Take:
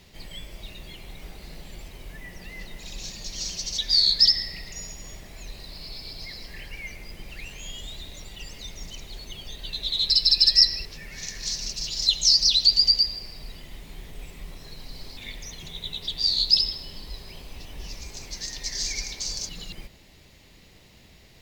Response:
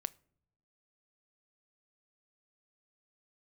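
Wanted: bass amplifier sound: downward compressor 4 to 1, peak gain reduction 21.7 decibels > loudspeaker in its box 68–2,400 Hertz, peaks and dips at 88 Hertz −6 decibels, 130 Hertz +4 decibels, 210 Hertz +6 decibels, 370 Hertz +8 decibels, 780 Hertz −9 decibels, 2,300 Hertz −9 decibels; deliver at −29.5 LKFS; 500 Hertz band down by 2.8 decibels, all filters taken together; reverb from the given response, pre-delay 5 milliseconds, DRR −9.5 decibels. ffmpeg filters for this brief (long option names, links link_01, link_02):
-filter_complex "[0:a]equalizer=frequency=500:width_type=o:gain=-9,asplit=2[link_01][link_02];[1:a]atrim=start_sample=2205,adelay=5[link_03];[link_02][link_03]afir=irnorm=-1:irlink=0,volume=11dB[link_04];[link_01][link_04]amix=inputs=2:normalize=0,acompressor=threshold=-28dB:ratio=4,highpass=frequency=68:width=0.5412,highpass=frequency=68:width=1.3066,equalizer=frequency=88:width_type=q:width=4:gain=-6,equalizer=frequency=130:width_type=q:width=4:gain=4,equalizer=frequency=210:width_type=q:width=4:gain=6,equalizer=frequency=370:width_type=q:width=4:gain=8,equalizer=frequency=780:width_type=q:width=4:gain=-9,equalizer=frequency=2300:width_type=q:width=4:gain=-9,lowpass=frequency=2400:width=0.5412,lowpass=frequency=2400:width=1.3066,volume=12dB"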